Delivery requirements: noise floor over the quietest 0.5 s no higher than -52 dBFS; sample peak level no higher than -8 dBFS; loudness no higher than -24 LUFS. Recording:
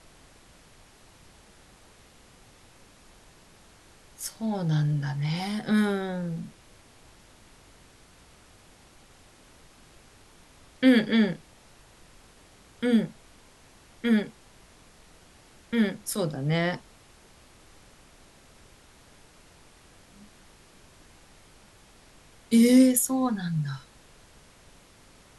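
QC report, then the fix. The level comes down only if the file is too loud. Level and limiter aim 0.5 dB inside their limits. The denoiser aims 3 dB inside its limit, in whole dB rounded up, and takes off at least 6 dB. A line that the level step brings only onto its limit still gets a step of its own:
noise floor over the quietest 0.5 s -55 dBFS: OK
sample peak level -9.0 dBFS: OK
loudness -25.5 LUFS: OK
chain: none

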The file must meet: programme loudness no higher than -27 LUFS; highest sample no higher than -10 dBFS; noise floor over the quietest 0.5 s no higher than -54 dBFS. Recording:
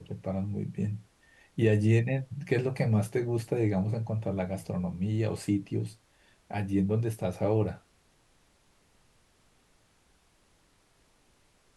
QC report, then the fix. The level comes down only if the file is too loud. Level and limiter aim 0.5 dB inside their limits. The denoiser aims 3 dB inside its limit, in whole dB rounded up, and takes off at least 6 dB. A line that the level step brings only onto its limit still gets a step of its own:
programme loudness -30.0 LUFS: OK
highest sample -12.5 dBFS: OK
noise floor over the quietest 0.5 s -66 dBFS: OK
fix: none

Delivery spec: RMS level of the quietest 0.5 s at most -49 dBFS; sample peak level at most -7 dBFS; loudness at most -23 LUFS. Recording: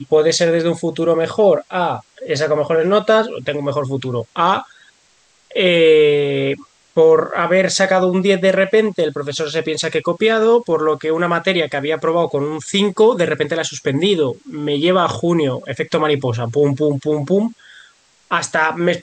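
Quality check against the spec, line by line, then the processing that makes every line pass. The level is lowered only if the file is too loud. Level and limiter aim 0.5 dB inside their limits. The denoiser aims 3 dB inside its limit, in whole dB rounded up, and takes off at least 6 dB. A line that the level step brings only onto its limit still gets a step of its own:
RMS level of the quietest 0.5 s -55 dBFS: OK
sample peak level -3.5 dBFS: fail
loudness -16.5 LUFS: fail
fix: gain -7 dB

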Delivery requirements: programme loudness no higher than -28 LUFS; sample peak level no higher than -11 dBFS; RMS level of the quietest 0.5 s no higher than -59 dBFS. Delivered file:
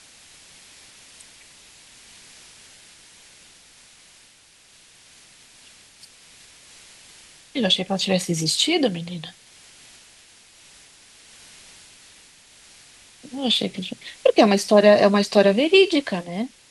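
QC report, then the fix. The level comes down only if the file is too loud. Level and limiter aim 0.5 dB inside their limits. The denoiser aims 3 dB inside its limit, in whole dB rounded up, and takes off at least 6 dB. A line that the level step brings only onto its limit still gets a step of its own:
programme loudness -19.5 LUFS: fail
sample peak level -2.0 dBFS: fail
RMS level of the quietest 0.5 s -53 dBFS: fail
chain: gain -9 dB; limiter -11.5 dBFS

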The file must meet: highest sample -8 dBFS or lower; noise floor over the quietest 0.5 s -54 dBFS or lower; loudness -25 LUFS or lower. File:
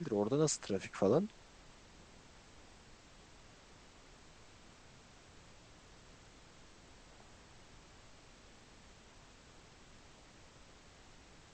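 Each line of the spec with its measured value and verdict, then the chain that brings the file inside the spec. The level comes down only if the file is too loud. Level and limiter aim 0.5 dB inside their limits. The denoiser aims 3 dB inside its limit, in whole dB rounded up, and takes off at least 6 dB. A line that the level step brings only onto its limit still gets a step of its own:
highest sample -18.5 dBFS: OK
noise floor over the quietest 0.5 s -60 dBFS: OK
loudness -34.5 LUFS: OK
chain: none

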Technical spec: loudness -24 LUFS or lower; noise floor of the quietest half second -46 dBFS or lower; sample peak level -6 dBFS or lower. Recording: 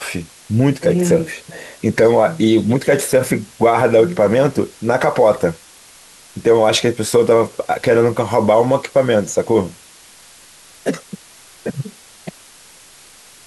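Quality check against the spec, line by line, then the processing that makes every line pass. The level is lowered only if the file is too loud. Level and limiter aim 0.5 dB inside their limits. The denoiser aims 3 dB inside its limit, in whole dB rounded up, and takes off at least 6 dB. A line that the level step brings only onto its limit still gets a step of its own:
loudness -15.5 LUFS: fail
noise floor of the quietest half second -44 dBFS: fail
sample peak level -3.0 dBFS: fail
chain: gain -9 dB

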